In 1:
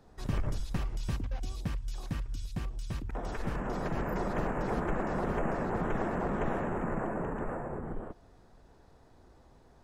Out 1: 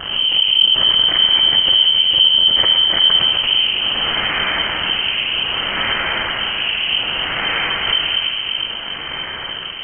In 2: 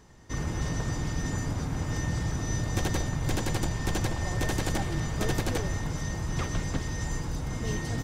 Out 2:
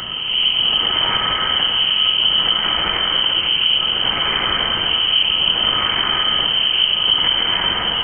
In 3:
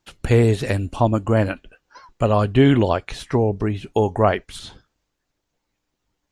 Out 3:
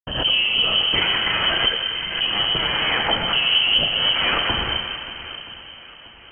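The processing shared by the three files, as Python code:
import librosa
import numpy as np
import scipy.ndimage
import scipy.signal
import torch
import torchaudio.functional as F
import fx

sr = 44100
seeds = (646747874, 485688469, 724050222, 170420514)

y = fx.low_shelf(x, sr, hz=350.0, db=-7.0)
y = fx.transient(y, sr, attack_db=-7, sustain_db=4)
y = fx.rider(y, sr, range_db=3, speed_s=0.5)
y = fx.leveller(y, sr, passes=5)
y = fx.fuzz(y, sr, gain_db=47.0, gate_db=-44.0)
y = fx.phaser_stages(y, sr, stages=2, low_hz=270.0, high_hz=1400.0, hz=0.63, feedback_pct=40)
y = fx.echo_swing(y, sr, ms=976, ratio=1.5, feedback_pct=37, wet_db=-16.0)
y = fx.rev_plate(y, sr, seeds[0], rt60_s=2.9, hf_ratio=0.45, predelay_ms=0, drr_db=1.0)
y = fx.freq_invert(y, sr, carrier_hz=3100)
y = fx.pre_swell(y, sr, db_per_s=70.0)
y = y * librosa.db_to_amplitude(-5.5)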